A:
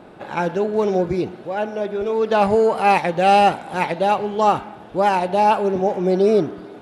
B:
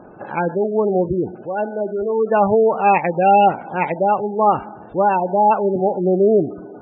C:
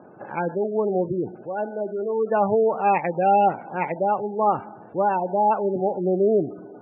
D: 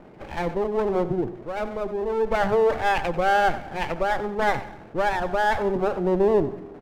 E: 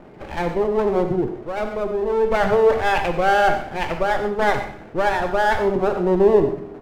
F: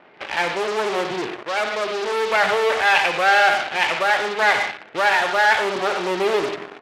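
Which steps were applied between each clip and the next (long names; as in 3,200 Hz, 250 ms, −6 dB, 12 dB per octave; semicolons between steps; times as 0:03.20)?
gate on every frequency bin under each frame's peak −20 dB strong; level +1.5 dB
elliptic band-pass filter 110–2,300 Hz; level −5 dB
lower of the sound and its delayed copy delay 0.35 ms; low-shelf EQ 100 Hz +7.5 dB; repeating echo 92 ms, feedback 37%, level −15 dB
reverb whose tail is shaped and stops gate 160 ms flat, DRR 7 dB; level +3 dB
low-pass filter 3,800 Hz; in parallel at −9 dB: fuzz pedal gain 31 dB, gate −34 dBFS; on the sum: resonant band-pass 3,000 Hz, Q 0.78; level +6.5 dB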